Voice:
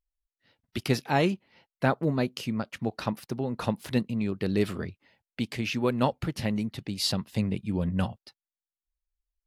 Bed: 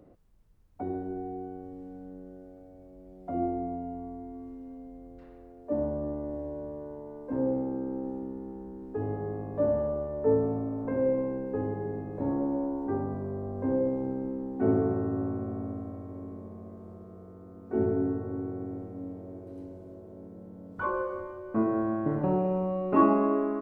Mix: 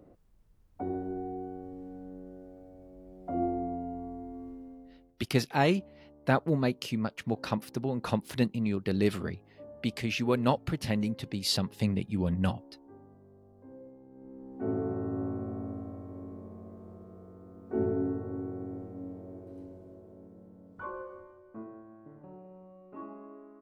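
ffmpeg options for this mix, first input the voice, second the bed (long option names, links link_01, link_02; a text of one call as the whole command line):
ffmpeg -i stem1.wav -i stem2.wav -filter_complex "[0:a]adelay=4450,volume=-1dB[link_01];[1:a]volume=19.5dB,afade=type=out:start_time=4.48:duration=0.67:silence=0.0794328,afade=type=in:start_time=14.1:duration=1.15:silence=0.1,afade=type=out:start_time=19.37:duration=2.47:silence=0.0944061[link_02];[link_01][link_02]amix=inputs=2:normalize=0" out.wav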